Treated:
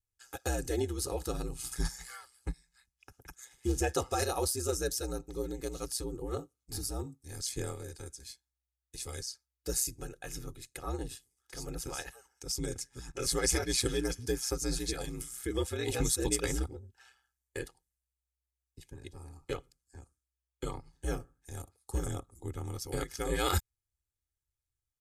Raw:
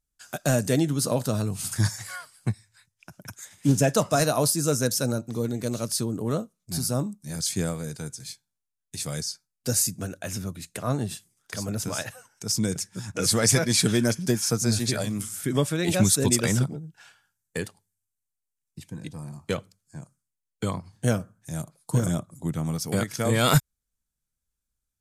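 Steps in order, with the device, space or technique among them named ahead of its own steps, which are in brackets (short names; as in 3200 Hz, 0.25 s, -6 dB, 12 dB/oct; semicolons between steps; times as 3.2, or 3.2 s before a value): ring-modulated robot voice (ring modulator 63 Hz; comb 2.4 ms, depth 86%); gain -8 dB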